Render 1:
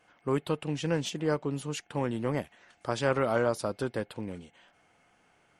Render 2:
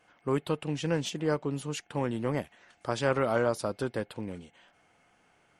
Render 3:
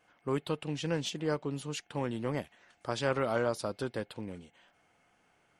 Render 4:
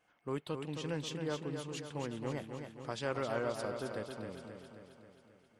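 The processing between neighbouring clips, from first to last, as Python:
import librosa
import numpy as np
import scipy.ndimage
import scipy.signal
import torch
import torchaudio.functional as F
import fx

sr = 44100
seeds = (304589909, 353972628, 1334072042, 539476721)

y1 = x
y2 = fx.dynamic_eq(y1, sr, hz=4000.0, q=1.2, threshold_db=-54.0, ratio=4.0, max_db=4)
y2 = y2 * librosa.db_to_amplitude(-3.5)
y3 = fx.echo_feedback(y2, sr, ms=267, feedback_pct=58, wet_db=-6.5)
y3 = y3 * librosa.db_to_amplitude(-6.0)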